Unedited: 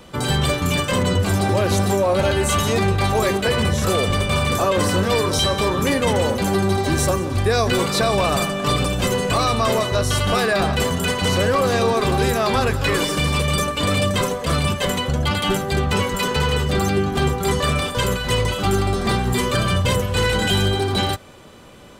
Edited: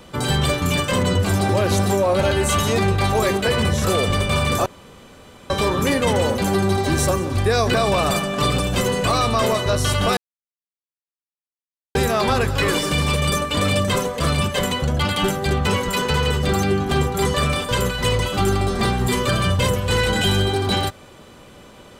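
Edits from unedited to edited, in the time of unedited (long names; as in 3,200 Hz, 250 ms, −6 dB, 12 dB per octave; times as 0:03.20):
0:04.66–0:05.50: fill with room tone
0:07.74–0:08.00: remove
0:10.43–0:12.21: silence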